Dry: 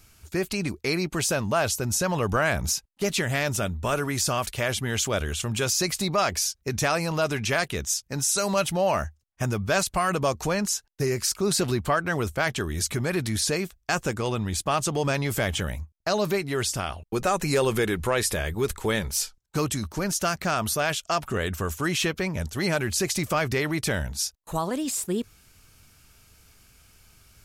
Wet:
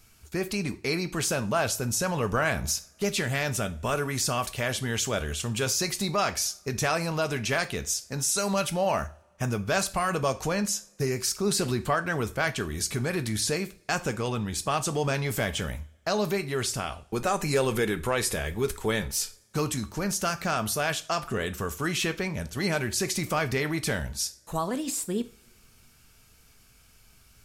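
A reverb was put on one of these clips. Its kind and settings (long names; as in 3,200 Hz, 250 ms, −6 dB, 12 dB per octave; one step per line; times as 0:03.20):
coupled-rooms reverb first 0.34 s, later 1.8 s, from −26 dB, DRR 9 dB
level −2.5 dB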